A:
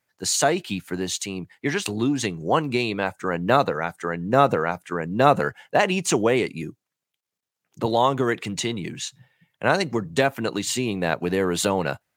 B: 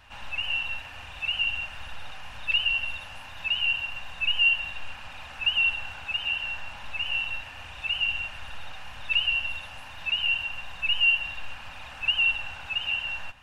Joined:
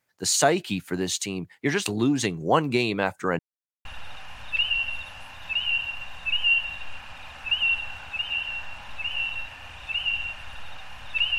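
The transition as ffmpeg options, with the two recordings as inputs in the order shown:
-filter_complex "[0:a]apad=whole_dur=11.38,atrim=end=11.38,asplit=2[a][b];[a]atrim=end=3.39,asetpts=PTS-STARTPTS,afade=t=out:st=3.386:d=0.004:c=hsin[c];[b]atrim=start=3.39:end=3.85,asetpts=PTS-STARTPTS,volume=0[d];[1:a]atrim=start=1.8:end=9.33,asetpts=PTS-STARTPTS,afade=t=in:d=0.004:c=hsin[e];[c][d][e]concat=n=3:v=0:a=1"

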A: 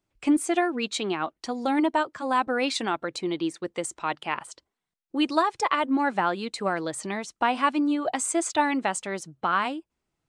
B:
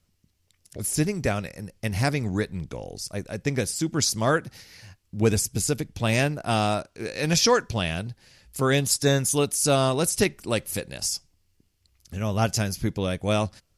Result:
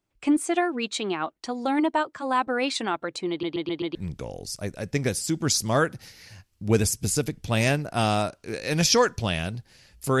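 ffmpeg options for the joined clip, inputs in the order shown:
-filter_complex "[0:a]apad=whole_dur=10.2,atrim=end=10.2,asplit=5[a][b][c][d][e];[a]atrim=end=3.432[f];[b]atrim=start=3.298:end=3.432[g];[c]atrim=start=3.298:end=3.432[h];[d]atrim=start=3.298:end=3.432[i];[e]atrim=start=3.298:end=3.432[j];[1:a]atrim=start=2.468:end=8.72[k];[f][g]acrossfade=d=0.004:c1=hsin:c2=hsin[l];[l][h]acrossfade=d=0.004:c1=hsin:c2=hsin[m];[m][i]acrossfade=d=0.004:c1=hsin:c2=hsin[n];[n][j]acrossfade=d=0.004:c1=hsin:c2=hsin[o];[o][k]acrossfade=d=0.004:c1=hsin:c2=hsin"

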